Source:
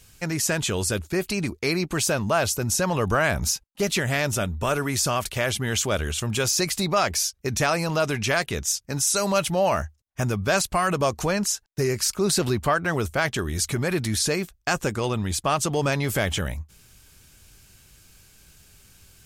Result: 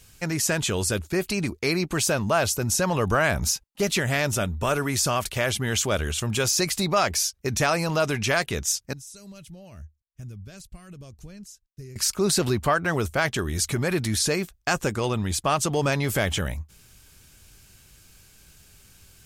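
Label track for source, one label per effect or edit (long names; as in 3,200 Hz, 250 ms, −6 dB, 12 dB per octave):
8.930000	11.960000	guitar amp tone stack bass-middle-treble 10-0-1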